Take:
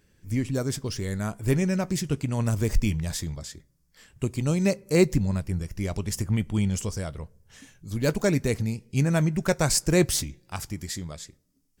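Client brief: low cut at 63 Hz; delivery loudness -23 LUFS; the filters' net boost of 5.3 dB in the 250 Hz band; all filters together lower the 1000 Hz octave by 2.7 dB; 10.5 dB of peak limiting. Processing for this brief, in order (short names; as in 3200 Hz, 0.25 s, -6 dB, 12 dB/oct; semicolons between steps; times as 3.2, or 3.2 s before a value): HPF 63 Hz; bell 250 Hz +8 dB; bell 1000 Hz -4.5 dB; gain +3 dB; limiter -12 dBFS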